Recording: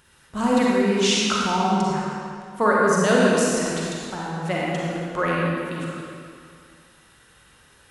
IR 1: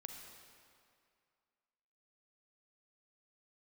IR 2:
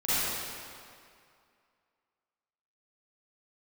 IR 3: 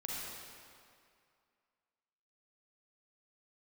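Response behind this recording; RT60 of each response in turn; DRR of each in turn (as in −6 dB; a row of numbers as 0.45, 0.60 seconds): 3; 2.3, 2.3, 2.3 seconds; 3.0, −14.5, −4.5 decibels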